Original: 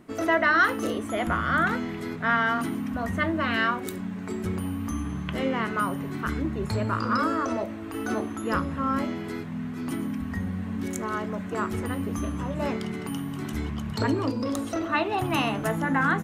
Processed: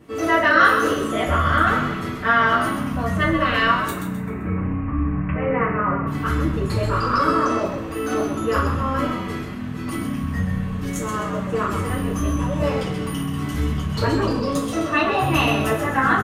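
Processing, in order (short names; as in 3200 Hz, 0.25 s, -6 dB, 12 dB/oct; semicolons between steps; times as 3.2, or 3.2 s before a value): 3.89–6.07 steep low-pass 2500 Hz 72 dB/oct; frequency-shifting echo 0.13 s, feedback 38%, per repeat -59 Hz, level -7 dB; reverb, pre-delay 3 ms, DRR -7.5 dB; gain -2.5 dB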